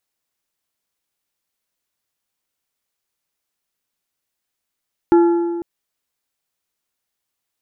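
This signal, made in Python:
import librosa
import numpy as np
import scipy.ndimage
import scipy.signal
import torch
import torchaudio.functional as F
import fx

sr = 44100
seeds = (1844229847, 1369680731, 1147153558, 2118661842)

y = fx.strike_metal(sr, length_s=0.5, level_db=-7, body='plate', hz=342.0, decay_s=1.81, tilt_db=10.0, modes=4)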